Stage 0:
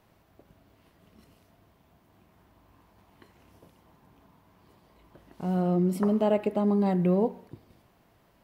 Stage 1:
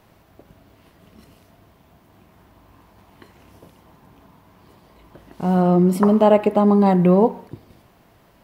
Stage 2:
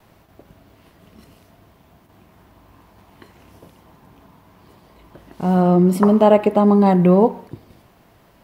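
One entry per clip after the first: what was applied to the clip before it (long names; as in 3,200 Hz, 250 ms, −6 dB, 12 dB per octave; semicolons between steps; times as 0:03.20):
dynamic equaliser 1,000 Hz, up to +6 dB, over −46 dBFS, Q 1.6; level +9 dB
noise gate with hold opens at −45 dBFS; level +1.5 dB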